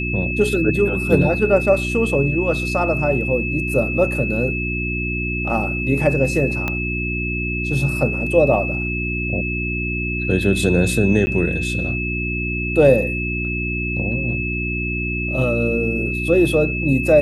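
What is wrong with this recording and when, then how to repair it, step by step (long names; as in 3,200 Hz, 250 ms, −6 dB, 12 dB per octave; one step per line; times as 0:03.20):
mains hum 60 Hz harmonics 6 −25 dBFS
whistle 2,600 Hz −24 dBFS
0:06.68: click −9 dBFS
0:11.26–0:11.27: drop-out 10 ms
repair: click removal
hum removal 60 Hz, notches 6
notch filter 2,600 Hz, Q 30
repair the gap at 0:11.26, 10 ms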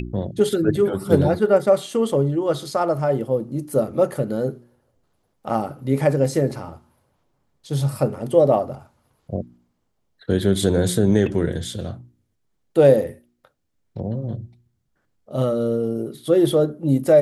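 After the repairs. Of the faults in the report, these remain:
0:06.68: click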